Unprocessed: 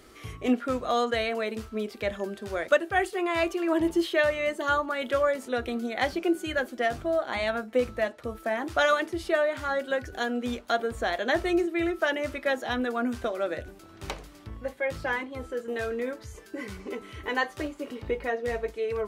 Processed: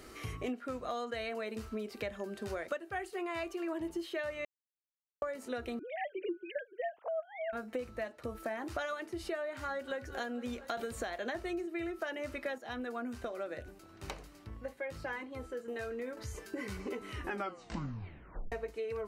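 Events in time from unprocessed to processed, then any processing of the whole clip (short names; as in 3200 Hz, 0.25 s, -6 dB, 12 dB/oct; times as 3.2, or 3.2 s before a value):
4.45–5.22 mute
5.79–7.53 sine-wave speech
9.55–9.97 echo throw 0.23 s, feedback 65%, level -17 dB
10.77–11.35 three-band squash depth 100%
12.58–16.17 gain -7 dB
17.09 tape stop 1.43 s
whole clip: notch 3400 Hz, Q 11; compressor 6:1, threshold -37 dBFS; gain +1 dB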